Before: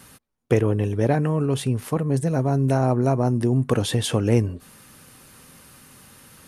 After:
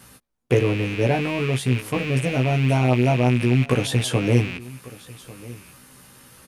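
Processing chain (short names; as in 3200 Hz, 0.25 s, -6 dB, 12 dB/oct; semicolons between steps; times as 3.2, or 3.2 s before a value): rattling part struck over -33 dBFS, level -19 dBFS; doubler 16 ms -3.5 dB; on a send: echo 1.146 s -20 dB; on the sum: gain -1.5 dB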